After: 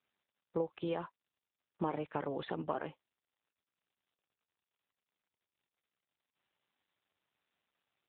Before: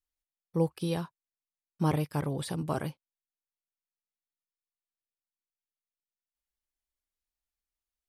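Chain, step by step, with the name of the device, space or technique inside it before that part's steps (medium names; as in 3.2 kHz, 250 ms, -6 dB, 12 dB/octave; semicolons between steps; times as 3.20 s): voicemail (band-pass 370–3000 Hz; compression 12:1, threshold -33 dBFS, peak gain reduction 9 dB; trim +3 dB; AMR-NB 7.95 kbps 8 kHz)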